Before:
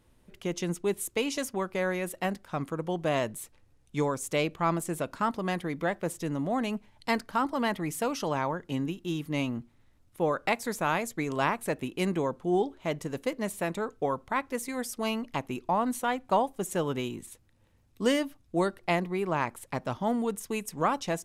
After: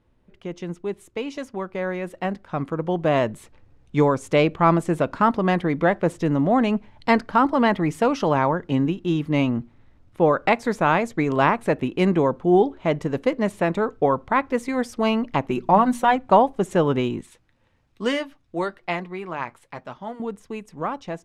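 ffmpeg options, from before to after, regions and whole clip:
ffmpeg -i in.wav -filter_complex "[0:a]asettb=1/sr,asplit=3[link_01][link_02][link_03];[link_01]atrim=end=15.494[link_04];[link_02]atrim=start=15.49:end=16.16,asetpts=PTS-STARTPTS,afade=type=in:duration=0.004:curve=qsin,afade=type=out:start_time=0.666:duration=0.004:curve=qsin,highshelf=frequency=9700:gain=8,bandreject=frequency=60:width_type=h:width=6,bandreject=frequency=120:width_type=h:width=6,bandreject=frequency=180:width_type=h:width=6,bandreject=frequency=240:width_type=h:width=6,aecho=1:1:5.3:0.5,atrim=end_sample=29547[link_05];[link_03]atrim=start=16.156[link_06];[link_04][link_05]acrossfade=duration=0.004:curve1=hsin:curve2=qsin[link_07];[link_07][link_06]acrossfade=duration=0.004:curve1=qsin:curve2=hsin,asettb=1/sr,asplit=3[link_08][link_09][link_10];[link_08]atrim=end=17.214[link_11];[link_09]atrim=start=17.21:end=20.2,asetpts=PTS-STARTPTS,afade=type=in:duration=0.004:curve=qsin,afade=type=out:start_time=2.986:duration=0.004:curve=qsin,tiltshelf=frequency=800:gain=-5,flanger=delay=4.5:depth=3.6:regen=-62:speed=1.1:shape=triangular,bandreject=frequency=50:width_type=h:width=6,bandreject=frequency=100:width_type=h:width=6,bandreject=frequency=150:width_type=h:width=6[link_12];[link_10]atrim=start=20.196[link_13];[link_11][link_12]acrossfade=duration=0.004:curve1=hsin:curve2=qsin[link_14];[link_14][link_13]acrossfade=duration=0.004:curve1=qsin:curve2=hsin,highshelf=frequency=11000:gain=-11,dynaudnorm=framelen=260:gausssize=21:maxgain=11.5dB,aemphasis=mode=reproduction:type=75kf" out.wav

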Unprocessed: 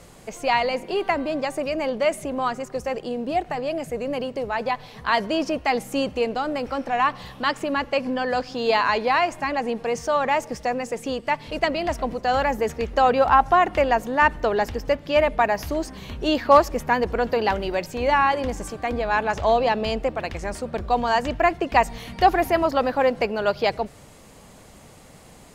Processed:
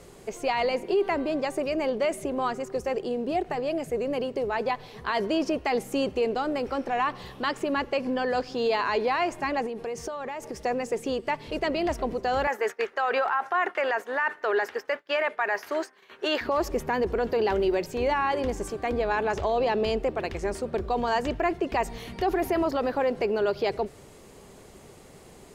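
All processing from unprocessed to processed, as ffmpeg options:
ffmpeg -i in.wav -filter_complex "[0:a]asettb=1/sr,asplit=3[link_01][link_02][link_03];[link_01]atrim=end=9.664[link_04];[link_02]atrim=start=9.66:end=10.65,asetpts=PTS-STARTPTS,afade=type=in:duration=0.004:curve=qsin,afade=type=out:start_time=0.986:duration=0.004:curve=qsin,equalizer=frequency=11000:width_type=o:width=0.37:gain=4.5,acompressor=threshold=-28dB:ratio=12:attack=3.2:release=140:knee=1:detection=peak[link_05];[link_03]atrim=start=10.646[link_06];[link_04][link_05]acrossfade=duration=0.004:curve1=hsin:curve2=qsin[link_07];[link_07][link_06]acrossfade=duration=0.004:curve1=qsin:curve2=hsin,asettb=1/sr,asplit=3[link_08][link_09][link_10];[link_08]atrim=end=12.474[link_11];[link_09]atrim=start=12.47:end=16.41,asetpts=PTS-STARTPTS,afade=type=in:duration=0.004:curve=qsin,afade=type=out:start_time=3.936:duration=0.004:curve=qsin,agate=range=-33dB:threshold=-27dB:ratio=3:release=100:detection=peak,highpass=480,equalizer=frequency=1600:width=1.1:gain=13[link_12];[link_10]atrim=start=16.406[link_13];[link_11][link_12]acrossfade=duration=0.004:curve1=hsin:curve2=qsin[link_14];[link_14][link_13]acrossfade=duration=0.004:curve1=qsin:curve2=hsin,equalizer=frequency=390:width_type=o:width=0.37:gain=11.5,alimiter=limit=-13.5dB:level=0:latency=1:release=29,volume=-3.5dB" out.wav

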